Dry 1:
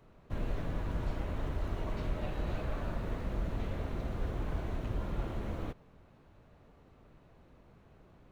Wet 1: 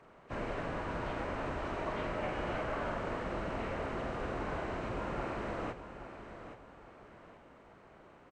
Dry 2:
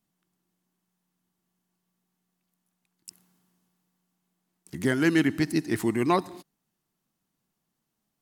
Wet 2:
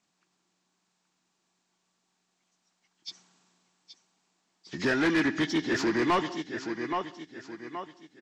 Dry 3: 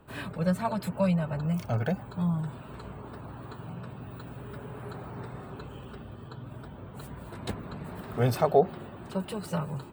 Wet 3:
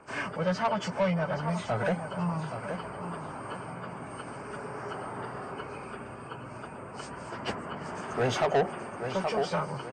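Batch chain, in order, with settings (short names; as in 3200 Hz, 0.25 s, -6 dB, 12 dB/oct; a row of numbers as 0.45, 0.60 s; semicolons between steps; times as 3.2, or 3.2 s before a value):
nonlinear frequency compression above 1600 Hz 1.5:1; feedback echo 0.824 s, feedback 36%, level -11 dB; overdrive pedal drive 22 dB, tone 4200 Hz, clips at -9.5 dBFS; gain -7 dB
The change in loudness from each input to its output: 0.0, -3.0, -2.0 LU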